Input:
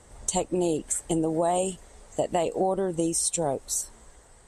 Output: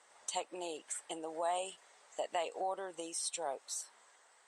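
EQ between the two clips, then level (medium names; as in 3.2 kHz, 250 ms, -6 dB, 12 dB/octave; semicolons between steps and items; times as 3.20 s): high-pass 940 Hz 12 dB/octave; dynamic bell 6.7 kHz, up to -6 dB, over -46 dBFS, Q 3.4; distance through air 73 m; -3.0 dB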